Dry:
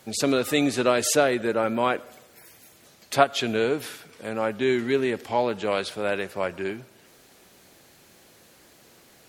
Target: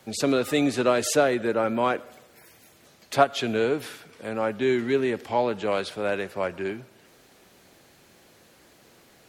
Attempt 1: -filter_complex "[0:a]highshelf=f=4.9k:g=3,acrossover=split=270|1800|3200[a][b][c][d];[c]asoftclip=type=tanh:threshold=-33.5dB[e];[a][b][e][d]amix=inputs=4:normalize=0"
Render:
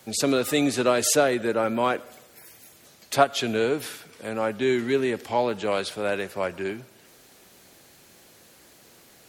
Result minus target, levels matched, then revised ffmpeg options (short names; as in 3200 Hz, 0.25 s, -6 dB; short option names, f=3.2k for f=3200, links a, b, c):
8000 Hz band +5.0 dB
-filter_complex "[0:a]highshelf=f=4.9k:g=-5,acrossover=split=270|1800|3200[a][b][c][d];[c]asoftclip=type=tanh:threshold=-33.5dB[e];[a][b][e][d]amix=inputs=4:normalize=0"